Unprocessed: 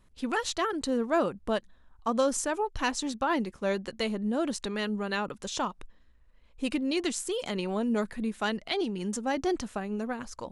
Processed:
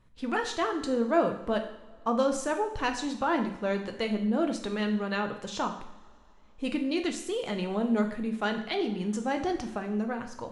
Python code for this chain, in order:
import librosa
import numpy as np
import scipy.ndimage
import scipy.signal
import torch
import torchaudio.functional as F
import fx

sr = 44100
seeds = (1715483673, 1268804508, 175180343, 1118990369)

y = fx.lowpass(x, sr, hz=3200.0, slope=6)
y = fx.rev_double_slope(y, sr, seeds[0], early_s=0.67, late_s=3.2, knee_db=-22, drr_db=4.5)